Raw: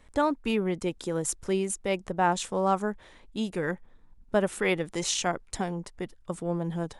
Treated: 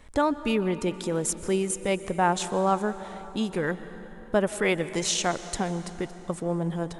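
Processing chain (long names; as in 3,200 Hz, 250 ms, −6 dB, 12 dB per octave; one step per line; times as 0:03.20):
in parallel at −1 dB: downward compressor, threshold −36 dBFS, peak gain reduction 16 dB
on the sum: dense smooth reverb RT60 4 s, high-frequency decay 0.65×, pre-delay 110 ms, DRR 13 dB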